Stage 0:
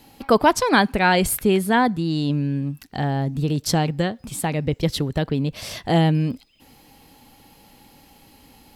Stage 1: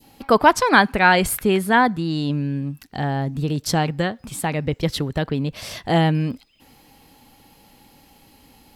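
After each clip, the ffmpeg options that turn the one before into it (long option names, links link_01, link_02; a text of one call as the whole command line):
ffmpeg -i in.wav -af "adynamicequalizer=threshold=0.0282:dfrequency=1400:dqfactor=0.74:tfrequency=1400:tqfactor=0.74:attack=5:release=100:ratio=0.375:range=3:mode=boostabove:tftype=bell,volume=-1dB" out.wav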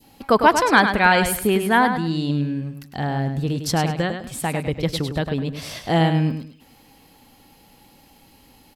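ffmpeg -i in.wav -af "aecho=1:1:103|206|309:0.398|0.111|0.0312,volume=-1dB" out.wav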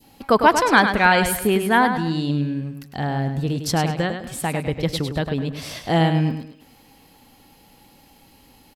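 ffmpeg -i in.wav -filter_complex "[0:a]asplit=2[link_01][link_02];[link_02]adelay=230,highpass=300,lowpass=3400,asoftclip=type=hard:threshold=-12dB,volume=-18dB[link_03];[link_01][link_03]amix=inputs=2:normalize=0" out.wav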